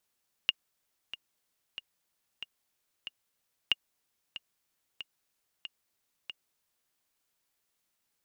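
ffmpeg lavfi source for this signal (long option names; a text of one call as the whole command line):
ffmpeg -f lavfi -i "aevalsrc='pow(10,(-11-15*gte(mod(t,5*60/93),60/93))/20)*sin(2*PI*2840*mod(t,60/93))*exp(-6.91*mod(t,60/93)/0.03)':duration=6.45:sample_rate=44100" out.wav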